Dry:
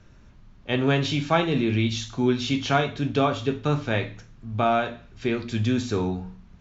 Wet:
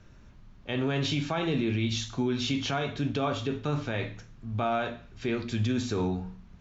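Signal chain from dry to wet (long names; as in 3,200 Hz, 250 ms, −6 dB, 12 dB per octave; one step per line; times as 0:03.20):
brickwall limiter −18 dBFS, peak gain reduction 10.5 dB
level −1.5 dB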